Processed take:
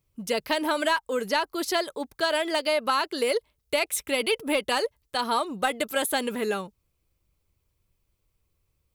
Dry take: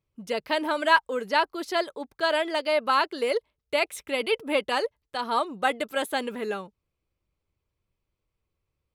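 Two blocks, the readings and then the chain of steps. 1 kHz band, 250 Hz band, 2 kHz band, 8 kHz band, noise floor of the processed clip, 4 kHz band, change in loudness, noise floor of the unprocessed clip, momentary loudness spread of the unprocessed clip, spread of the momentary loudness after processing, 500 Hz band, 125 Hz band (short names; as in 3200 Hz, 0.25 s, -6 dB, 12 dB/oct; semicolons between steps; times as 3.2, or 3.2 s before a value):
-2.0 dB, +2.5 dB, -1.5 dB, +9.5 dB, -76 dBFS, +2.0 dB, 0.0 dB, -83 dBFS, 10 LU, 5 LU, 0.0 dB, n/a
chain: in parallel at -9 dB: soft clip -16.5 dBFS, distortion -15 dB; on the sum: high shelf 5500 Hz +12 dB; compressor 6:1, threshold -21 dBFS, peak gain reduction 10 dB; low shelf 130 Hz +6.5 dB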